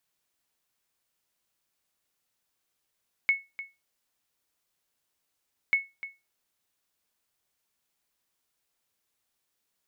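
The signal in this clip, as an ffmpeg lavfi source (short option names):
-f lavfi -i "aevalsrc='0.168*(sin(2*PI*2200*mod(t,2.44))*exp(-6.91*mod(t,2.44)/0.23)+0.188*sin(2*PI*2200*max(mod(t,2.44)-0.3,0))*exp(-6.91*max(mod(t,2.44)-0.3,0)/0.23))':d=4.88:s=44100"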